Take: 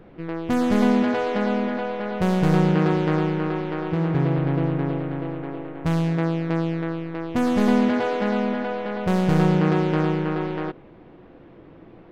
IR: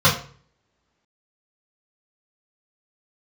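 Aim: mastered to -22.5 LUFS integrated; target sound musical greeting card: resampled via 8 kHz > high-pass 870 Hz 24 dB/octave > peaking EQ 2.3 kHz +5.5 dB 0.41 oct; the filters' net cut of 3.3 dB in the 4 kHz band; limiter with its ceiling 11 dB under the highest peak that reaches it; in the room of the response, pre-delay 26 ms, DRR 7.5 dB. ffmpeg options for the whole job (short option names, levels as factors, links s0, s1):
-filter_complex "[0:a]equalizer=f=4000:t=o:g=-6,alimiter=limit=0.133:level=0:latency=1,asplit=2[s0][s1];[1:a]atrim=start_sample=2205,adelay=26[s2];[s1][s2]afir=irnorm=-1:irlink=0,volume=0.0355[s3];[s0][s3]amix=inputs=2:normalize=0,aresample=8000,aresample=44100,highpass=f=870:w=0.5412,highpass=f=870:w=1.3066,equalizer=f=2300:t=o:w=0.41:g=5.5,volume=5.62"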